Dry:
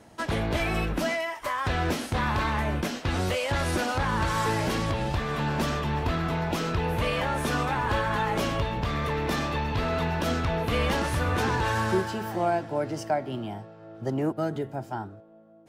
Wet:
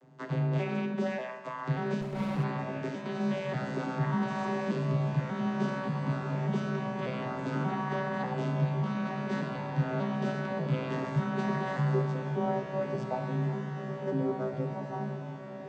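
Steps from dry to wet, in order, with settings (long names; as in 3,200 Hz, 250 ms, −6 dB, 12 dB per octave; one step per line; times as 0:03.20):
vocoder with an arpeggio as carrier bare fifth, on B2, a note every 588 ms
frequency shifter +21 Hz
on a send: feedback delay with all-pass diffusion 1,820 ms, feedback 53%, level −7 dB
on the sum: four-comb reverb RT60 1.2 s, combs from 32 ms, DRR 7.5 dB
0:02.01–0:02.44: windowed peak hold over 17 samples
level −3.5 dB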